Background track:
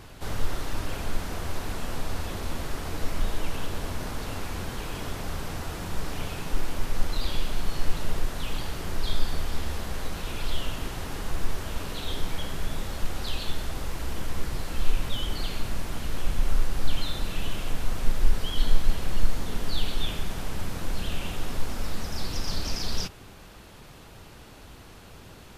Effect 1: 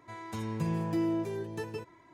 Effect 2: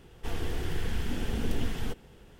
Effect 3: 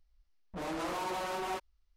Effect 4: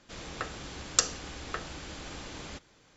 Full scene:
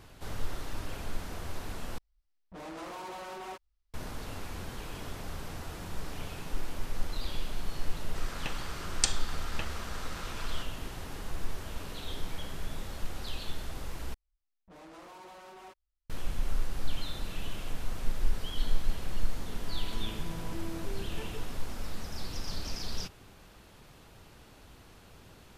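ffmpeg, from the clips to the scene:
-filter_complex "[3:a]asplit=2[a][b];[0:a]volume=-7dB[c];[4:a]aeval=exprs='val(0)*sin(2*PI*1300*n/s)':c=same[d];[1:a]acompressor=threshold=-31dB:ratio=6:attack=3.2:release=140:knee=1:detection=peak[e];[c]asplit=3[f][g][h];[f]atrim=end=1.984[i];[a]atrim=end=1.96,asetpts=PTS-STARTPTS,volume=-6dB[j];[g]atrim=start=3.936:end=14.144[k];[b]atrim=end=1.96,asetpts=PTS-STARTPTS,volume=-14dB[l];[h]atrim=start=16.096[m];[d]atrim=end=2.96,asetpts=PTS-STARTPTS,afade=t=in:d=0.004:c=hsin,afade=t=out:st=2.956:d=0.004:c=hsin,adelay=8050[n];[e]atrim=end=2.13,asetpts=PTS-STARTPTS,volume=-7dB,afade=t=in:d=0.004:c=hsin,afade=t=out:st=2.126:d=0.004:c=hsin,adelay=19600[o];[i][j]acrossfade=d=0.004:c1=hsin:c2=hsin[p];[p][k]acrossfade=d=0.004:c1=hsin:c2=hsin[q];[q][l]acrossfade=d=0.004:c1=hsin:c2=hsin[r];[r][m]acrossfade=d=0.004:c1=hsin:c2=hsin[s];[s][n][o]amix=inputs=3:normalize=0"

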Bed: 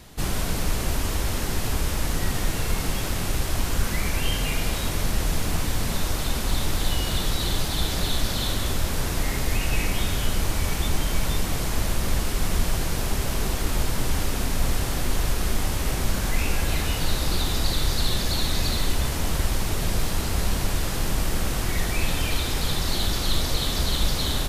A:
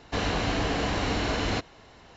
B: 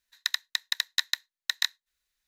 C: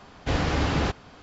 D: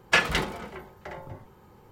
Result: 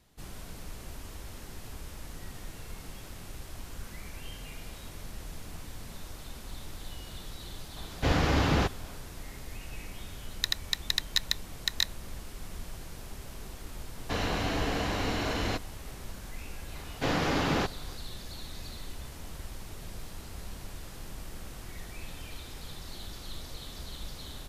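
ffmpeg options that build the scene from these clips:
-filter_complex "[3:a]asplit=2[a][b];[0:a]volume=-18dB[c];[2:a]equalizer=f=1.6k:t=o:w=0.77:g=-5.5[d];[b]highpass=140[e];[a]atrim=end=1.22,asetpts=PTS-STARTPTS,volume=-1dB,afade=t=in:d=0.004:c=hsin,afade=t=out:st=1.216:d=0.004:c=hsin,adelay=7760[f];[d]atrim=end=2.27,asetpts=PTS-STARTPTS,volume=-0.5dB,afade=t=in:d=0.004:c=hsin,afade=t=out:st=2.266:d=0.004:c=hsin,adelay=448938S[g];[1:a]atrim=end=2.16,asetpts=PTS-STARTPTS,volume=-3.5dB,afade=t=in:d=0.004:c=hsin,afade=t=out:st=2.156:d=0.004:c=hsin,adelay=13970[h];[e]atrim=end=1.22,asetpts=PTS-STARTPTS,volume=-1.5dB,afade=t=in:d=0.004:c=hsin,afade=t=out:st=1.216:d=0.004:c=hsin,adelay=16750[i];[c][f][g][h][i]amix=inputs=5:normalize=0"

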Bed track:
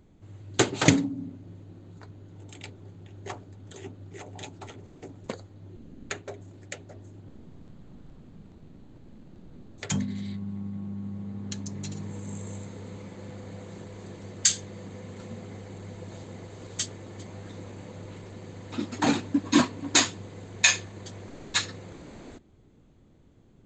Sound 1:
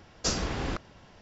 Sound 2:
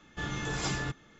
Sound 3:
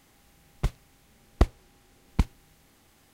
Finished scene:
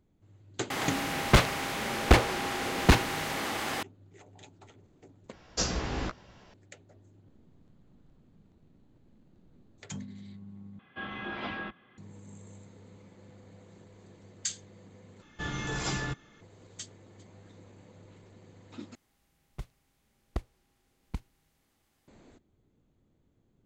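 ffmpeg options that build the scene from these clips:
-filter_complex "[3:a]asplit=2[a][b];[2:a]asplit=2[c][d];[0:a]volume=-12dB[e];[a]asplit=2[f][g];[g]highpass=f=720:p=1,volume=42dB,asoftclip=type=tanh:threshold=-6dB[h];[f][h]amix=inputs=2:normalize=0,lowpass=f=1.8k:p=1,volume=-6dB[i];[1:a]asplit=2[j][k];[k]adelay=16,volume=-7dB[l];[j][l]amix=inputs=2:normalize=0[m];[c]highpass=f=250:t=q:w=0.5412,highpass=f=250:t=q:w=1.307,lowpass=f=3.4k:t=q:w=0.5176,lowpass=f=3.4k:t=q:w=0.7071,lowpass=f=3.4k:t=q:w=1.932,afreqshift=-94[n];[e]asplit=5[o][p][q][r][s];[o]atrim=end=5.334[t];[m]atrim=end=1.21,asetpts=PTS-STARTPTS,volume=-2dB[u];[p]atrim=start=6.536:end=10.794[v];[n]atrim=end=1.19,asetpts=PTS-STARTPTS,volume=-1dB[w];[q]atrim=start=11.976:end=15.224[x];[d]atrim=end=1.19[y];[r]atrim=start=16.406:end=18.954[z];[b]atrim=end=3.13,asetpts=PTS-STARTPTS,volume=-13dB[aa];[s]atrim=start=22.076[ab];[i]atrim=end=3.13,asetpts=PTS-STARTPTS,volume=-0.5dB,afade=t=in:d=0.004:c=hsin,afade=t=out:st=3.126:d=0.004:c=hsin,adelay=700[ac];[t][u]acrossfade=d=0.004:c1=hsin:c2=hsin[ad];[ad][v]acrossfade=d=0.004:c1=hsin:c2=hsin[ae];[ae][w]acrossfade=d=0.004:c1=hsin:c2=hsin[af];[af][x]acrossfade=d=0.004:c1=hsin:c2=hsin[ag];[ag][y]acrossfade=d=0.004:c1=hsin:c2=hsin[ah];[ah][z]acrossfade=d=0.004:c1=hsin:c2=hsin[ai];[ai][aa]acrossfade=d=0.004:c1=hsin:c2=hsin[aj];[aj][ab]acrossfade=d=0.004:c1=hsin:c2=hsin[ak];[ak][ac]amix=inputs=2:normalize=0"

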